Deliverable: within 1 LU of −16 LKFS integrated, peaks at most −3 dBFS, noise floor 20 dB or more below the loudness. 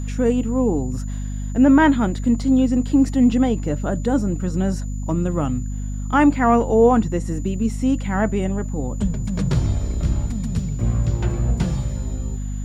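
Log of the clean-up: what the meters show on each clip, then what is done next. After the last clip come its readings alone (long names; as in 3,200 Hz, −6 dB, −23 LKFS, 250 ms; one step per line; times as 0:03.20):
mains hum 50 Hz; hum harmonics up to 250 Hz; level of the hum −23 dBFS; interfering tone 7,000 Hz; level of the tone −44 dBFS; integrated loudness −20.5 LKFS; sample peak −3.0 dBFS; target loudness −16.0 LKFS
→ hum removal 50 Hz, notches 5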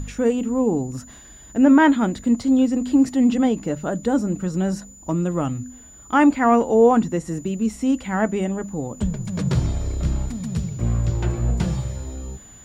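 mains hum none found; interfering tone 7,000 Hz; level of the tone −44 dBFS
→ notch filter 7,000 Hz, Q 30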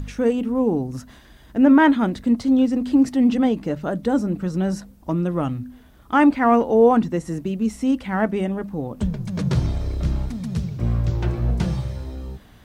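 interfering tone none found; integrated loudness −21.0 LKFS; sample peak −4.5 dBFS; target loudness −16.0 LKFS
→ level +5 dB
brickwall limiter −3 dBFS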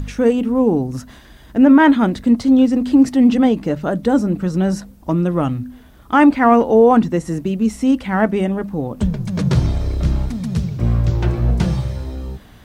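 integrated loudness −16.5 LKFS; sample peak −3.0 dBFS; background noise floor −44 dBFS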